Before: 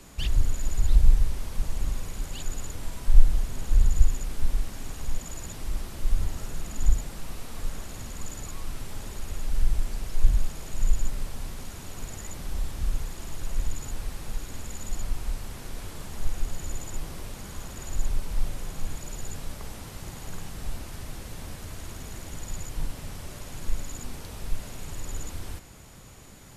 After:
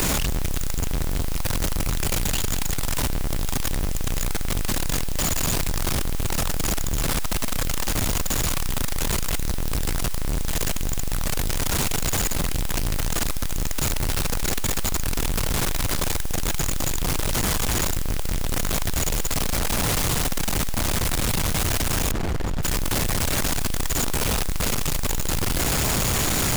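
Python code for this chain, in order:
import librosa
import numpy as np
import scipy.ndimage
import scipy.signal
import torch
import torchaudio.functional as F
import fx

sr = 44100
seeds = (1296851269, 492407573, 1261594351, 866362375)

y = np.sign(x) * np.sqrt(np.mean(np.square(x)))
y = fx.mod_noise(y, sr, seeds[0], snr_db=17)
y = fx.lowpass(y, sr, hz=1200.0, slope=6, at=(22.11, 22.63))
y = y * 10.0 ** (1.5 / 20.0)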